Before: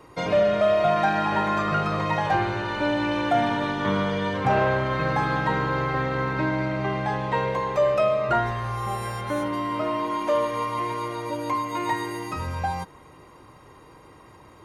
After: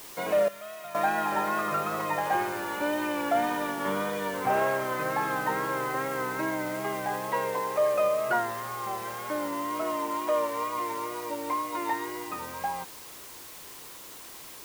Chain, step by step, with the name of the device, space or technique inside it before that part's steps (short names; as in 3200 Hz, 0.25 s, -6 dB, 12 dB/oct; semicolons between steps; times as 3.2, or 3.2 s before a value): wax cylinder (BPF 270–2800 Hz; wow and flutter; white noise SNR 16 dB); 0.48–0.95 passive tone stack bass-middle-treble 5-5-5; gain -3.5 dB